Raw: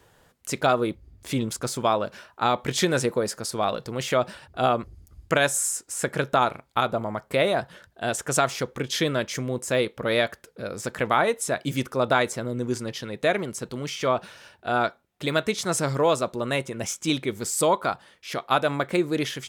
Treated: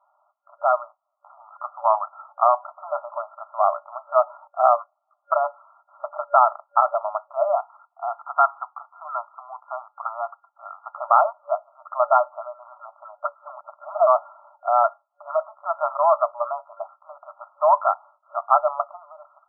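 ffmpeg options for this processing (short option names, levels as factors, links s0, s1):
-filter_complex "[0:a]asettb=1/sr,asplit=3[s0][s1][s2];[s0]atrim=end=0.904[s3];[s1]atrim=start=0.9:end=2.64,asetpts=PTS-STARTPTS,afade=t=in:d=0.004:c=qsin,afade=t=out:st=1.736:d=0.004:c=qsin,afreqshift=-120[s4];[s2]atrim=start=2.636[s5];[s3][s4]acrossfade=d=0.004:c1=hsin:c2=qsin[s6];[s6][s5]acrossfade=d=0.004:c1=qsin:c2=hsin,asettb=1/sr,asplit=3[s7][s8][s9];[s7]atrim=end=7.554[s10];[s8]atrim=start=7.55:end=10.98,asetpts=PTS-STARTPTS,afade=t=in:d=0.004:c=qsin,afade=t=out:st=3.426:d=0.004:c=qsin,asuperpass=centerf=1100:order=12:qfactor=1.1[s11];[s9]atrim=start=10.976[s12];[s10][s11]acrossfade=d=0.004:c1=hsin:c2=qsin[s13];[s13][s12]acrossfade=d=0.004:c1=qsin:c2=hsin,asettb=1/sr,asplit=3[s14][s15][s16];[s14]atrim=end=15.324[s17];[s15]atrim=start=15.32:end=15.74,asetpts=PTS-STARTPTS,afade=t=in:d=0.004:c=qsin,afade=t=out:st=0.416:d=0.004:c=qsin,deesser=1[s18];[s16]atrim=start=15.736[s19];[s17][s18]acrossfade=d=0.004:c1=hsin:c2=qsin[s20];[s20][s19]acrossfade=d=0.004:c1=qsin:c2=hsin,asplit=3[s21][s22][s23];[s21]atrim=end=13.252[s24];[s22]atrim=start=13.248:end=14.072,asetpts=PTS-STARTPTS,areverse[s25];[s23]atrim=start=14.068[s26];[s24][s25]acrossfade=d=0.004:c1=hsin:c2=hsin[s27];[s27][s26]acrossfade=d=0.004:c1=hsin:c2=hsin,aemphasis=mode=production:type=riaa,afftfilt=real='re*between(b*sr/4096,580,1400)':imag='im*between(b*sr/4096,580,1400)':win_size=4096:overlap=0.75,dynaudnorm=f=350:g=5:m=2.51"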